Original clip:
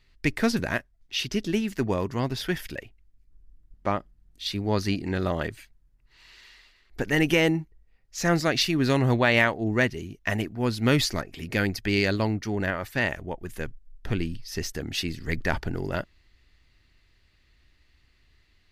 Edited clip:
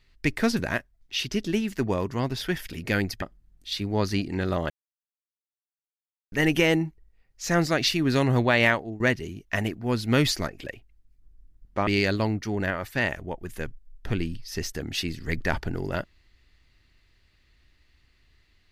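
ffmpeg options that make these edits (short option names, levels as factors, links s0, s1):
-filter_complex "[0:a]asplit=8[s0][s1][s2][s3][s4][s5][s6][s7];[s0]atrim=end=2.732[s8];[s1]atrim=start=11.378:end=11.872[s9];[s2]atrim=start=3.958:end=5.44,asetpts=PTS-STARTPTS,afade=t=out:st=1.478:d=0.004:c=hsin[s10];[s3]atrim=start=5.44:end=7.06,asetpts=PTS-STARTPTS,volume=0[s11];[s4]atrim=start=7.06:end=9.74,asetpts=PTS-STARTPTS,afade=t=in:d=0.004:c=hsin,afade=t=out:st=2.41:d=0.27:silence=0.11885[s12];[s5]atrim=start=9.74:end=11.382,asetpts=PTS-STARTPTS,afade=t=in:d=0.004:c=hsin:silence=0.11885[s13];[s6]atrim=start=2.728:end=3.962[s14];[s7]atrim=start=11.868[s15];[s8][s9]acrossfade=d=0.004:c1=hsin:c2=hsin[s16];[s10][s11][s12][s13]concat=n=4:v=0:a=1[s17];[s16][s17]acrossfade=d=0.004:c1=hsin:c2=hsin[s18];[s18][s14]acrossfade=d=0.004:c1=hsin:c2=hsin[s19];[s19][s15]acrossfade=d=0.004:c1=hsin:c2=hsin"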